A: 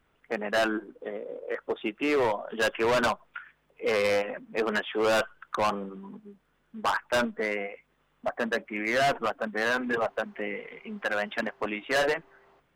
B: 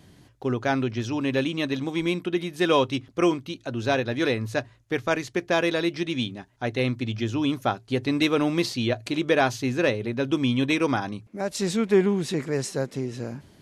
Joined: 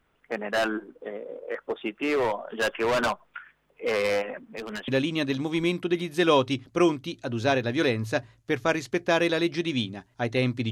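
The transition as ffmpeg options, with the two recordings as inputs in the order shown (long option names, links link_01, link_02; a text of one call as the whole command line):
ffmpeg -i cue0.wav -i cue1.wav -filter_complex "[0:a]asettb=1/sr,asplit=3[link_01][link_02][link_03];[link_01]atrim=end=4.434[link_04];[link_02]atrim=start=4.43:end=4.88,asetpts=PTS-STARTPTS,afade=type=in:duration=0.004:curve=qsin,afade=type=out:start_time=0.446:duration=0.004:curve=qsin,acrossover=split=200|3000[link_05][link_06][link_07];[link_06]acompressor=threshold=-35dB:ratio=6:attack=3.2:release=140:knee=2.83:detection=peak[link_08];[link_05][link_08][link_07]amix=inputs=3:normalize=0[link_09];[link_03]atrim=start=4.876[link_10];[link_04][link_09]acrossfade=duration=0.004:curve1=hsin:curve2=qsin[link_11];[link_11][link_10]acrossfade=duration=0.004:curve1=qsin:curve2=hsin,apad=whole_dur=10.71,atrim=end=10.71,atrim=end=4.882[link_12];[1:a]atrim=start=1.298:end=7.13[link_13];[link_12][link_13]acrossfade=duration=0.004:curve1=hsin:curve2=hsin" out.wav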